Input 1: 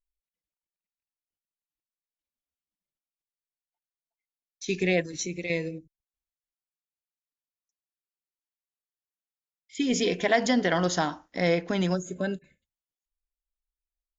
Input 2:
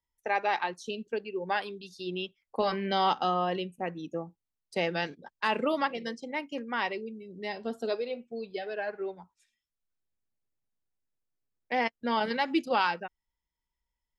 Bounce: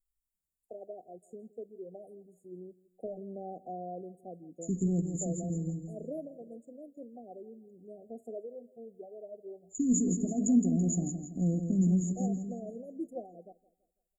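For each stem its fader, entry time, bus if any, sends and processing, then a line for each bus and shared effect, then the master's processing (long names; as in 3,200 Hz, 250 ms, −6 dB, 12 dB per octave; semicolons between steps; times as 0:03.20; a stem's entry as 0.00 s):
+1.5 dB, 0.00 s, no send, echo send −7.5 dB, drawn EQ curve 240 Hz 0 dB, 580 Hz −24 dB, 4,900 Hz +3 dB
−10.0 dB, 0.45 s, no send, echo send −20.5 dB, no processing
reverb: not used
echo: repeating echo 166 ms, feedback 39%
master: linear-phase brick-wall band-stop 760–6,700 Hz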